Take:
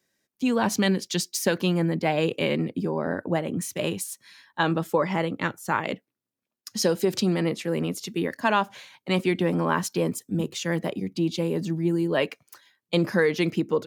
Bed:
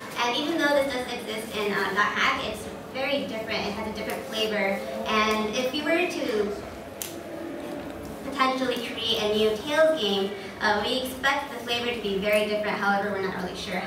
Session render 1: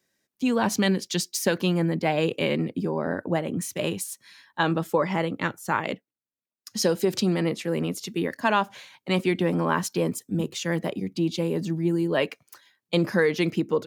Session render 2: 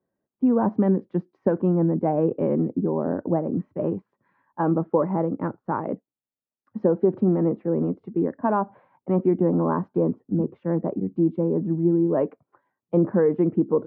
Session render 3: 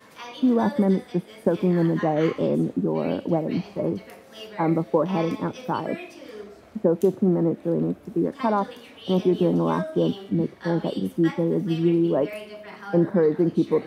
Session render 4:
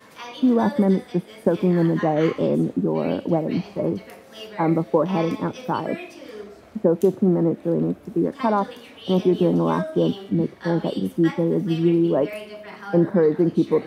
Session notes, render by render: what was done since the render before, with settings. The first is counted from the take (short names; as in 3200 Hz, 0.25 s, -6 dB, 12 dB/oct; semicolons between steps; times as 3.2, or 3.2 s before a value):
5.91–6.74 dip -12.5 dB, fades 0.18 s
dynamic EQ 290 Hz, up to +5 dB, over -37 dBFS, Q 1; LPF 1100 Hz 24 dB/oct
add bed -13.5 dB
gain +2 dB